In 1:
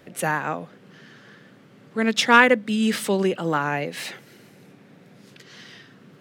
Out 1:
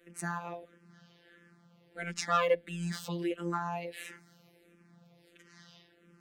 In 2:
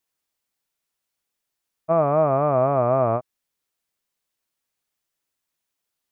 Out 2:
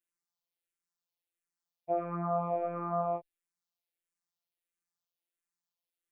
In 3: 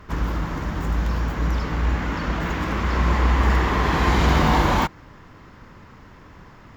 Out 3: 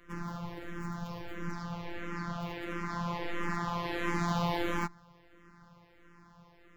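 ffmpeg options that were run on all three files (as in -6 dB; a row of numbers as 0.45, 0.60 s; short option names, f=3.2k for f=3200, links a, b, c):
-filter_complex "[0:a]afftfilt=real='hypot(re,im)*cos(PI*b)':imag='0':win_size=1024:overlap=0.75,asplit=2[a][b];[b]afreqshift=-1.5[c];[a][c]amix=inputs=2:normalize=1,volume=-6dB"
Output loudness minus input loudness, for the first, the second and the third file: -13.0, -13.0, -14.0 LU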